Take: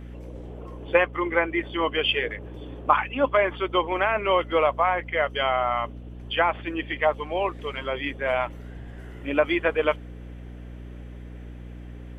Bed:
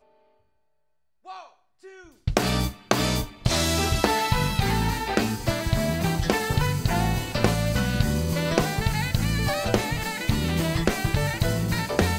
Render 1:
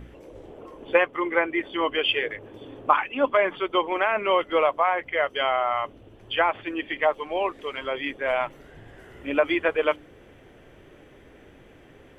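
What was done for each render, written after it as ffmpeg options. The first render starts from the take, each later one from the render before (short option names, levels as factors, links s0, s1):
-af "bandreject=f=60:t=h:w=4,bandreject=f=120:t=h:w=4,bandreject=f=180:t=h:w=4,bandreject=f=240:t=h:w=4,bandreject=f=300:t=h:w=4"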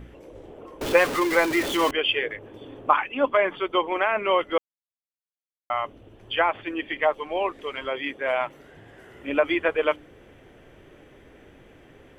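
-filter_complex "[0:a]asettb=1/sr,asplit=3[s0][s1][s2];[s0]atrim=end=0.814[s3];[s1]atrim=start=0.81:end=1.91,asetpts=PTS-STARTPTS,afade=t=in:d=0.004:c=qsin,afade=t=out:st=1.096:d=0.004:c=qsin,aeval=exprs='val(0)+0.5*0.0631*sgn(val(0))':c=same[s4];[s2]atrim=start=1.906[s5];[s3][s4]acrossfade=d=0.004:c1=hsin:c2=qsin[s6];[s6][s5]acrossfade=d=0.004:c1=qsin:c2=hsin,asettb=1/sr,asplit=3[s7][s8][s9];[s7]atrim=end=7.904[s10];[s8]atrim=start=7.9:end=9.29,asetpts=PTS-STARTPTS,afade=t=in:d=0.004:c=qsin,afade=t=out:st=1.386:d=0.004:c=qsin,highpass=f=120:p=1[s11];[s9]atrim=start=9.286[s12];[s10][s11]acrossfade=d=0.004:c1=hsin:c2=qsin[s13];[s13][s12]acrossfade=d=0.004:c1=qsin:c2=hsin,asplit=3[s14][s15][s16];[s14]atrim=end=4.58,asetpts=PTS-STARTPTS,afade=t=out:st=4.576:d=0.004:c=hsin[s17];[s15]atrim=start=4.58:end=5.7,asetpts=PTS-STARTPTS,volume=0[s18];[s16]atrim=start=5.7,asetpts=PTS-STARTPTS,afade=t=in:d=0.004:c=hsin[s19];[s17][s18][s19]concat=n=3:v=0:a=1"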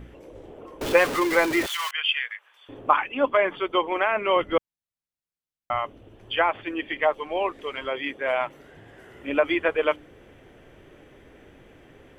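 -filter_complex "[0:a]asettb=1/sr,asplit=3[s0][s1][s2];[s0]atrim=end=1.664[s3];[s1]atrim=start=1.66:end=2.69,asetpts=PTS-STARTPTS,afade=t=in:d=0.004:c=qsin,afade=t=out:st=1.026:d=0.004:c=qsin,highpass=f=1200:w=0.5412,highpass=f=1200:w=1.3066[s4];[s2]atrim=start=2.686[s5];[s3][s4]acrossfade=d=0.004:c1=hsin:c2=qsin[s6];[s6][s5]acrossfade=d=0.004:c1=qsin:c2=hsin,asettb=1/sr,asplit=3[s7][s8][s9];[s7]atrim=end=4.364[s10];[s8]atrim=start=4.36:end=5.79,asetpts=PTS-STARTPTS,afade=t=in:d=0.004:c=qsin,afade=t=out:st=1.426:d=0.004:c=qsin,bass=f=250:g=11,treble=f=4000:g=-2[s11];[s9]atrim=start=5.786[s12];[s10][s11]acrossfade=d=0.004:c1=hsin:c2=qsin[s13];[s13][s12]acrossfade=d=0.004:c1=qsin:c2=hsin"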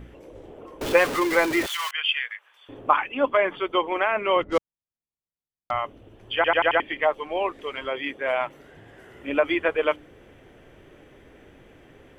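-filter_complex "[0:a]asettb=1/sr,asplit=3[s0][s1][s2];[s0]atrim=end=4.424[s3];[s1]atrim=start=4.42:end=5.71,asetpts=PTS-STARTPTS,afade=t=in:d=0.004:c=qsin,afade=t=out:st=1.286:d=0.004:c=qsin,adynamicsmooth=sensitivity=3.5:basefreq=910[s4];[s2]atrim=start=5.706[s5];[s3][s4]acrossfade=d=0.004:c1=hsin:c2=qsin[s6];[s6][s5]acrossfade=d=0.004:c1=qsin:c2=hsin,asplit=6[s7][s8][s9][s10][s11][s12];[s7]atrim=end=6.442[s13];[s8]atrim=start=6.348:end=6.442[s14];[s9]atrim=start=6.348:end=6.442[s15];[s10]atrim=start=6.348:end=6.442[s16];[s11]atrim=start=6.348:end=6.442[s17];[s12]atrim=start=6.798[s18];[s13][s14]acrossfade=d=0.004:c1=hsin:c2=hsin[s19];[s19][s15]acrossfade=d=0.004:c1=hsin:c2=hsin[s20];[s20][s16]acrossfade=d=0.004:c1=hsin:c2=hsin[s21];[s21][s17]acrossfade=d=0.004:c1=hsin:c2=hsin[s22];[s22][s18]acrossfade=d=0.004:c1=hsin:c2=hsin"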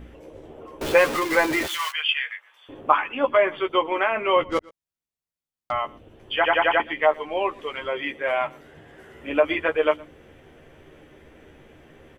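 -filter_complex "[0:a]asplit=2[s0][s1];[s1]adelay=13,volume=0.531[s2];[s0][s2]amix=inputs=2:normalize=0,aecho=1:1:117:0.0631"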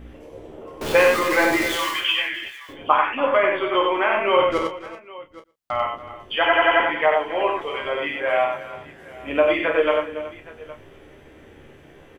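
-filter_complex "[0:a]asplit=2[s0][s1];[s1]adelay=30,volume=0.376[s2];[s0][s2]amix=inputs=2:normalize=0,asplit=2[s3][s4];[s4]aecho=0:1:50|93|282|305|374|818:0.447|0.596|0.168|0.112|0.15|0.112[s5];[s3][s5]amix=inputs=2:normalize=0"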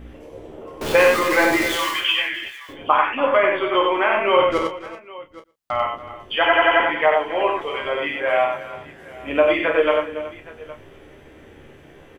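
-af "volume=1.19,alimiter=limit=0.708:level=0:latency=1"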